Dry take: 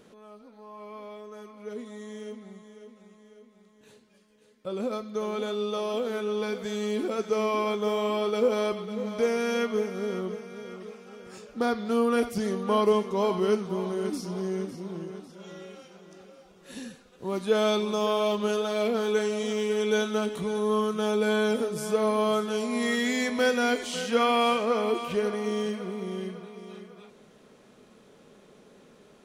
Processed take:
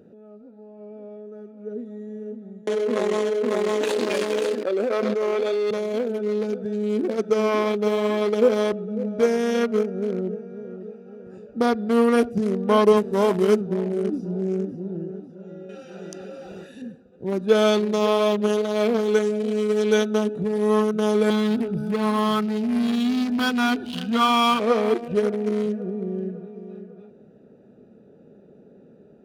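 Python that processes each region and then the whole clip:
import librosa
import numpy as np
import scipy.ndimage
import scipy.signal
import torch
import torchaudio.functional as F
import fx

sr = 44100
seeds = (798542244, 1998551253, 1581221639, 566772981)

y = fx.chain(x, sr, fx.highpass(hz=320.0, slope=24),
    fx.high_shelf(hz=4800.0, db=-6.0),
    fx.env_flatten(amount_pct=100), at=(2.67, 5.71))
y = fx.chain(y, sr, fx.delta_mod(bps=64000, step_db=-37.0),
    fx.highpass(hz=49.0, slope=12), at=(12.97, 13.61))
y = fx.chain(y, sr, fx.tilt_shelf(db=-9.5, hz=1100.0),
    fx.env_flatten(amount_pct=100), at=(15.69, 16.82))
y = fx.chain(y, sr, fx.fixed_phaser(hz=2000.0, stages=6),
    fx.power_curve(exponent=0.7), at=(21.3, 24.6))
y = fx.wiener(y, sr, points=41)
y = scipy.signal.sosfilt(scipy.signal.butter(2, 73.0, 'highpass', fs=sr, output='sos'), y)
y = F.gain(torch.from_numpy(y), 7.0).numpy()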